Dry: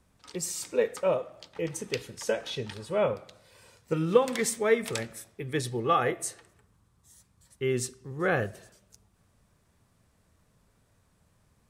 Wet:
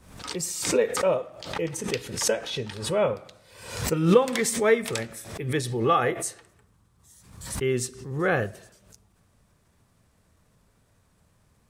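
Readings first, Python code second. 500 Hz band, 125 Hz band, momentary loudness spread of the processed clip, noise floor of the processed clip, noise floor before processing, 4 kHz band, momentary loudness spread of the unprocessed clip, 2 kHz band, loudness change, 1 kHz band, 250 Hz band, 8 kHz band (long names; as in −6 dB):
+3.0 dB, +5.5 dB, 14 LU, −65 dBFS, −68 dBFS, +6.0 dB, 11 LU, +3.5 dB, +3.5 dB, +3.0 dB, +5.5 dB, +5.5 dB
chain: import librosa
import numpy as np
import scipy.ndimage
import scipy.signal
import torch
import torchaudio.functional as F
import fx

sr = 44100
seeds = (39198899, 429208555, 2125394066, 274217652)

y = fx.pre_swell(x, sr, db_per_s=75.0)
y = y * librosa.db_to_amplitude(2.5)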